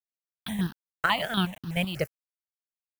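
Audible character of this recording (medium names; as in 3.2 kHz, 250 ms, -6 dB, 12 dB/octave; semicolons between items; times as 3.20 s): chopped level 5.1 Hz, depth 60%, duty 40%; a quantiser's noise floor 8-bit, dither none; notches that jump at a steady rate 8.2 Hz 970–2200 Hz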